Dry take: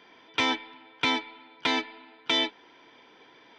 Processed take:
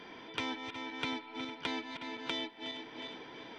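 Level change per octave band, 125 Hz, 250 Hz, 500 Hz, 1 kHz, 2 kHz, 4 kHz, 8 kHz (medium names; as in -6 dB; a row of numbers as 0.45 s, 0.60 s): -4.0 dB, -6.0 dB, -7.5 dB, -9.5 dB, -10.5 dB, -11.0 dB, -11.0 dB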